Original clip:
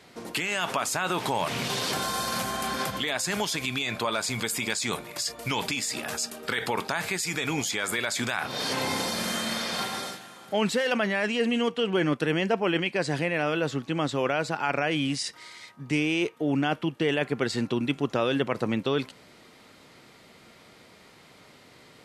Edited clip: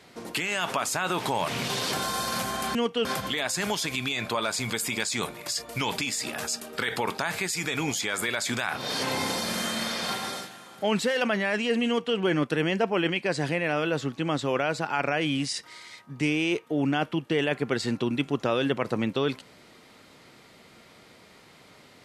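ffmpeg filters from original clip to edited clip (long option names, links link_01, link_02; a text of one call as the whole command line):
ffmpeg -i in.wav -filter_complex "[0:a]asplit=3[link_01][link_02][link_03];[link_01]atrim=end=2.752[link_04];[link_02]atrim=start=11.568:end=11.872[link_05];[link_03]atrim=start=2.748[link_06];[link_04][link_05]acrossfade=duration=0.004:curve1=hsin:curve2=hsin[link_07];[link_07][link_06]acrossfade=duration=0.004:curve1=hsin:curve2=hsin" out.wav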